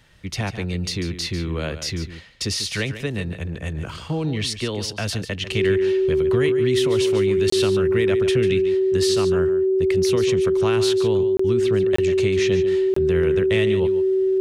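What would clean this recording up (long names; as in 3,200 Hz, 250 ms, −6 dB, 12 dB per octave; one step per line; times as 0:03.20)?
notch filter 380 Hz, Q 30
repair the gap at 0:07.50/0:11.37/0:11.96/0:12.94, 24 ms
echo removal 145 ms −11.5 dB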